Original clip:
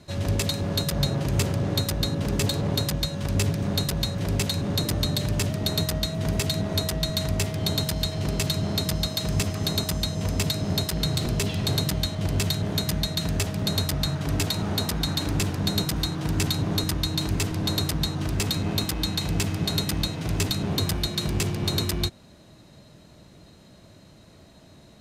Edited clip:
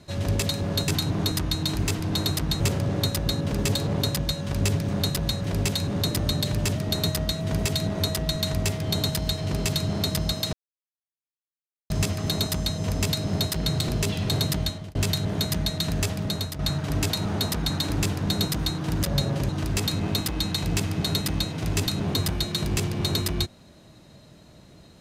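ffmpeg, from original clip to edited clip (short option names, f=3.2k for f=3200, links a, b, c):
-filter_complex "[0:a]asplit=8[a][b][c][d][e][f][g][h];[a]atrim=end=0.882[i];[b]atrim=start=16.398:end=18.122[j];[c]atrim=start=1.338:end=9.27,asetpts=PTS-STARTPTS,afade=t=out:st=7.928:d=0.004:c=hsin,apad=pad_dur=1.37[k];[d]atrim=start=9.27:end=12.32,asetpts=PTS-STARTPTS,afade=t=in:d=0.004:c=hsin,afade=t=out:st=2.73:d=0.32[l];[e]atrim=start=12.32:end=13.96,asetpts=PTS-STARTPTS,afade=t=in:d=0.004:c=hsin,afade=t=out:st=1.21:d=0.43:silence=0.316228[m];[f]atrim=start=13.96:end=16.402,asetpts=PTS-STARTPTS,afade=t=in:d=0.004:c=hsin:silence=0.316228[n];[g]atrim=start=0.878:end=1.342[o];[h]atrim=start=18.118[p];[i][j]acrossfade=d=0.004:c1=hsin:c2=hsin[q];[k][l][m][n]concat=n=4:v=0:a=1[r];[q][r]acrossfade=d=0.004:c1=hsin:c2=hsin[s];[s][o]acrossfade=d=0.004:c1=hsin:c2=hsin[t];[t][p]acrossfade=d=0.004:c1=hsin:c2=hsin"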